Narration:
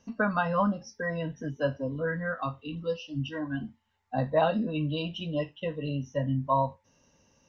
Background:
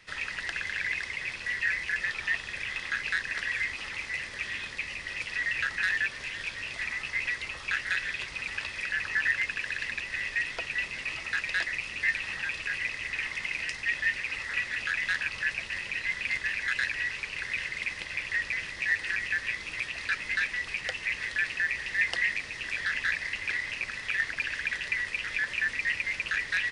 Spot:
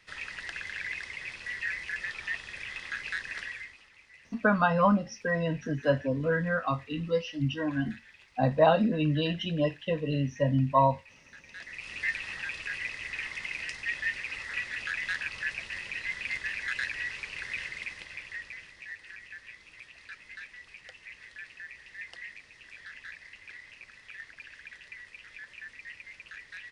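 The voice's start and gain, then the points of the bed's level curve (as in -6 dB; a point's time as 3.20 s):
4.25 s, +3.0 dB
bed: 3.41 s -5 dB
3.89 s -21.5 dB
11.44 s -21.5 dB
11.91 s -3.5 dB
17.64 s -3.5 dB
18.97 s -16 dB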